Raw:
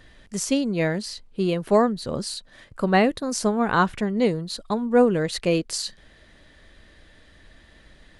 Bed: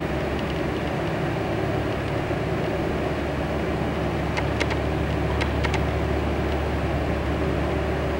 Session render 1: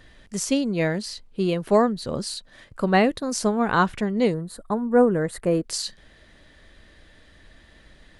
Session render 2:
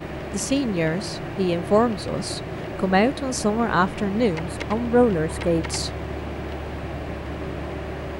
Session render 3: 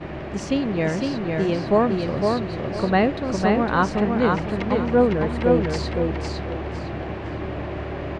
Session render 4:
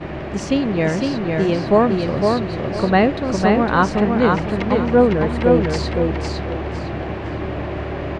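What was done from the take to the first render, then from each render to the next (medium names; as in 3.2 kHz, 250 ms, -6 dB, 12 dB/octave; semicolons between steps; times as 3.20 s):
4.34–5.64 s: high-order bell 3.9 kHz -15 dB
add bed -6.5 dB
distance through air 150 m; on a send: feedback delay 507 ms, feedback 27%, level -3.5 dB
trim +4 dB; peak limiter -3 dBFS, peak gain reduction 1 dB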